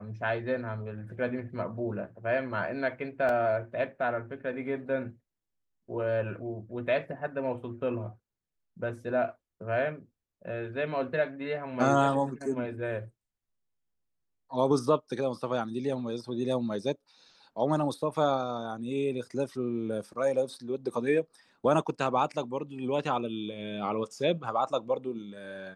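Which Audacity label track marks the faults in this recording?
3.290000	3.290000	dropout 2.5 ms

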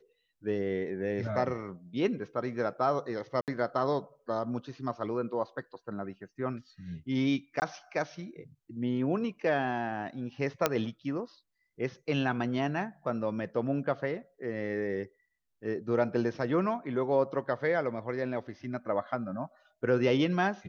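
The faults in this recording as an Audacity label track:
3.410000	3.480000	dropout 68 ms
7.600000	7.620000	dropout 19 ms
10.660000	10.660000	pop -9 dBFS

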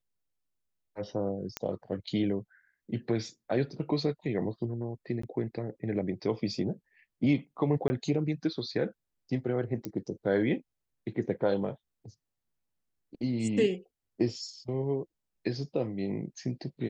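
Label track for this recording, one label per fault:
1.570000	1.570000	pop -15 dBFS
5.220000	5.230000	dropout 14 ms
7.880000	7.900000	dropout 20 ms
9.850000	9.850000	pop -20 dBFS

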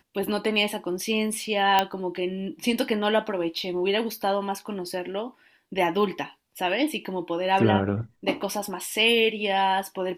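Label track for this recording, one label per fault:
1.790000	1.790000	pop -6 dBFS

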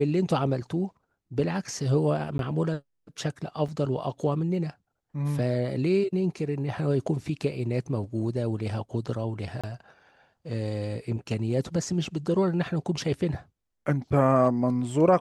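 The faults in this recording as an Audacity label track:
2.380000	2.390000	dropout 12 ms
3.680000	3.690000	dropout 5.4 ms
9.610000	9.640000	dropout 26 ms

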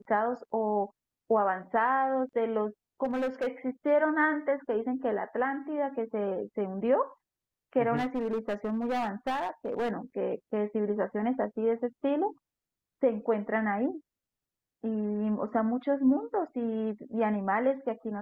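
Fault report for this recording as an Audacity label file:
3.040000	3.480000	clipped -26.5 dBFS
7.960000	9.920000	clipped -26.5 dBFS

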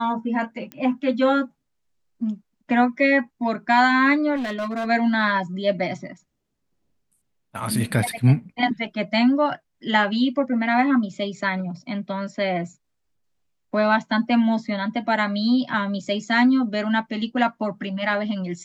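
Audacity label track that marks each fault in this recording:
0.720000	0.720000	pop -19 dBFS
4.350000	4.870000	clipped -23.5 dBFS

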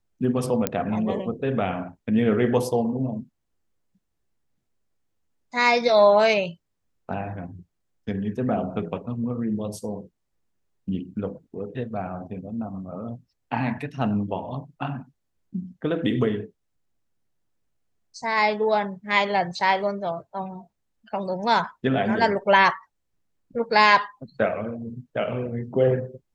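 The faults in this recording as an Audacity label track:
0.670000	0.670000	pop -6 dBFS

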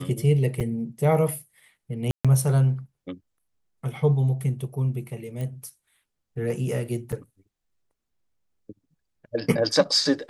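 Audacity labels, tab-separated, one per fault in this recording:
0.600000	0.610000	dropout 5.6 ms
2.110000	2.250000	dropout 136 ms
5.410000	5.410000	pop -22 dBFS
7.120000	7.130000	dropout 6.3 ms

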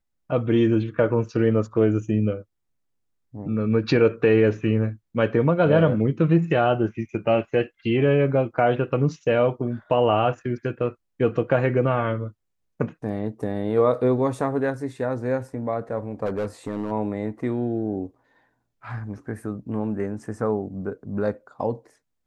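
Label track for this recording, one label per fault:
16.250000	16.910000	clipped -22 dBFS

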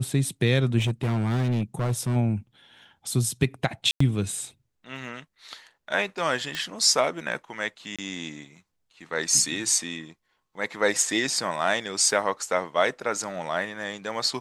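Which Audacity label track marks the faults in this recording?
0.780000	2.170000	clipped -21 dBFS
3.910000	4.000000	dropout 94 ms
6.550000	6.550000	pop -15 dBFS
7.960000	7.990000	dropout 26 ms
12.110000	12.110000	dropout 2.4 ms

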